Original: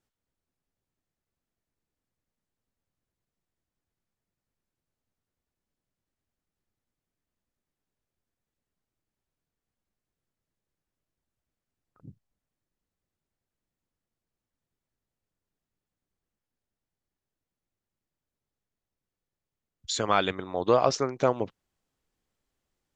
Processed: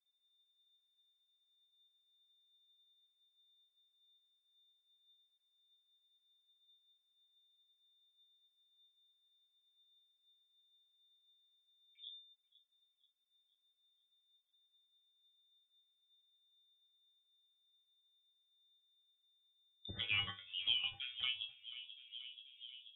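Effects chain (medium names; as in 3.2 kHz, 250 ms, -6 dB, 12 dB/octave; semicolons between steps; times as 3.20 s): expander on every frequency bin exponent 1.5; vibrato 0.46 Hz 38 cents; chord resonator A#3 sus4, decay 0.21 s; on a send: filtered feedback delay 484 ms, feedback 52%, low-pass 1 kHz, level -20.5 dB; on the sum: frequency inversion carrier 3.6 kHz; three bands compressed up and down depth 70%; trim +5 dB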